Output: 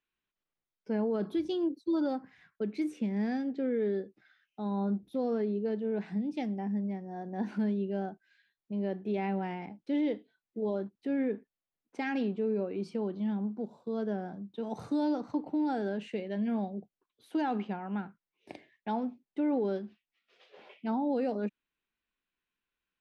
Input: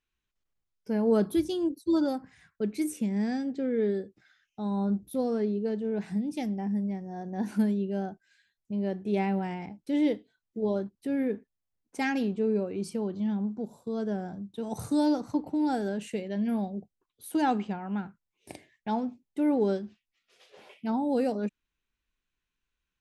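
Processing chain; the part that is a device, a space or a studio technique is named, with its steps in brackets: DJ mixer with the lows and highs turned down (three-band isolator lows -13 dB, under 160 Hz, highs -24 dB, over 4600 Hz; limiter -22.5 dBFS, peak gain reduction 8 dB); gain -1 dB

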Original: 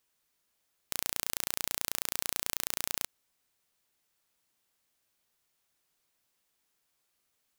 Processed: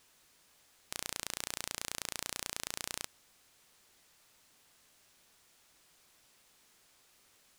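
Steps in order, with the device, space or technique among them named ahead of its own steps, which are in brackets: compact cassette (soft clip -19.5 dBFS, distortion -23 dB; LPF 10000 Hz 12 dB/oct; wow and flutter; white noise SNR 25 dB); gain +13 dB

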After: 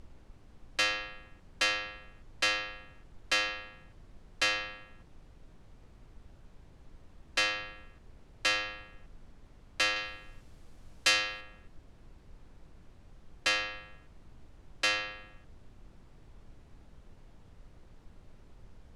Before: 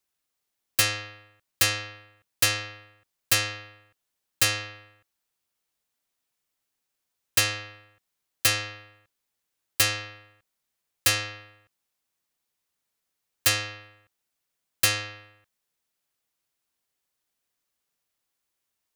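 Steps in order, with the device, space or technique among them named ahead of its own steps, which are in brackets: aircraft cabin announcement (BPF 410–3900 Hz; soft clip -19.5 dBFS, distortion -16 dB; brown noise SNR 13 dB); LPF 9600 Hz 12 dB/oct; 9.96–11.41 high shelf 4000 Hz +9 dB

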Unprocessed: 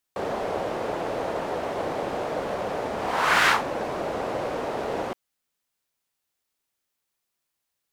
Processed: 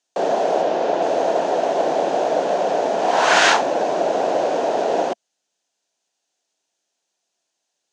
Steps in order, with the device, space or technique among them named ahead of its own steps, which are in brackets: television speaker (speaker cabinet 190–7600 Hz, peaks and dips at 220 Hz -5 dB, 680 Hz +7 dB, 1200 Hz -9 dB, 2100 Hz -7 dB, 6400 Hz +6 dB); 0.62–1.02 LPF 5900 Hz 12 dB/oct; gain +7.5 dB

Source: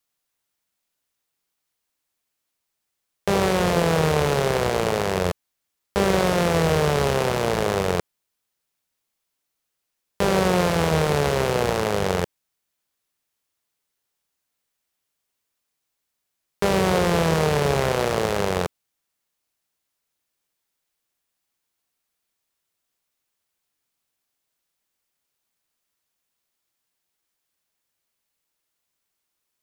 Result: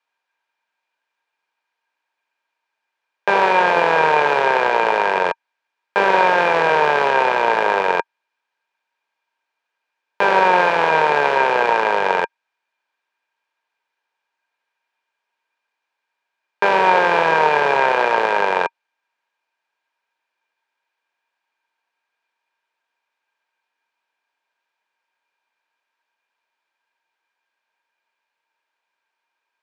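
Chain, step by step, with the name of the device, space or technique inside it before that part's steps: tin-can telephone (BPF 490–2900 Hz; small resonant body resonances 930/1600/2400 Hz, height 14 dB, ringing for 45 ms); gain +5.5 dB

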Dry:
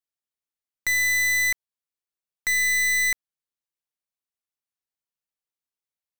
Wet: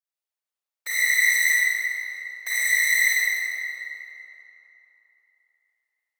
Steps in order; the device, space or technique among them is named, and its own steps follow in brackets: whispering ghost (whisperiser; HPF 430 Hz 24 dB/oct; reverb RT60 3.4 s, pre-delay 33 ms, DRR -7.5 dB); gain -5.5 dB

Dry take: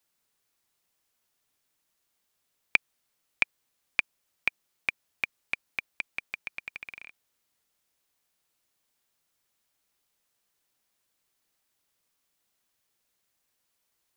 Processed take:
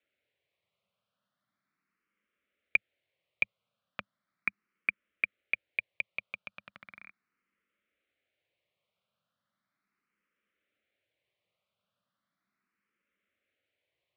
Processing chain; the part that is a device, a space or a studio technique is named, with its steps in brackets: barber-pole phaser into a guitar amplifier (endless phaser +0.37 Hz; soft clip -16.5 dBFS, distortion -9 dB; speaker cabinet 76–3400 Hz, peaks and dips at 110 Hz +3 dB, 200 Hz +8 dB, 570 Hz +7 dB, 860 Hz -9 dB, 1300 Hz +5 dB, 2200 Hz +5 dB)

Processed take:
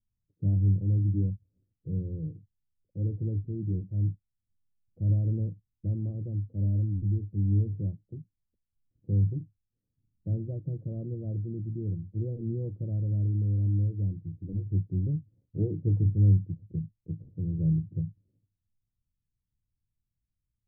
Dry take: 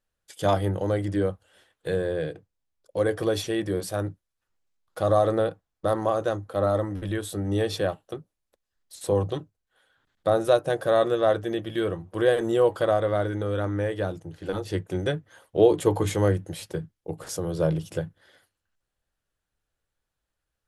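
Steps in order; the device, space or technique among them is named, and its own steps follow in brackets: the neighbour's flat through the wall (LPF 240 Hz 24 dB/oct; bell 110 Hz +6.5 dB 0.66 oct)

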